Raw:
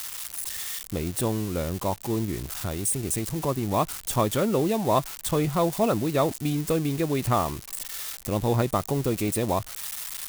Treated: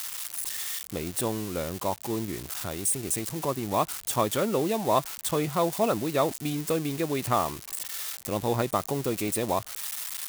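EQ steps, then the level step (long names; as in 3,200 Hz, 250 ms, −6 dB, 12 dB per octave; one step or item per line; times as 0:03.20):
high-pass filter 40 Hz
low-shelf EQ 66 Hz −8.5 dB
low-shelf EQ 300 Hz −5.5 dB
0.0 dB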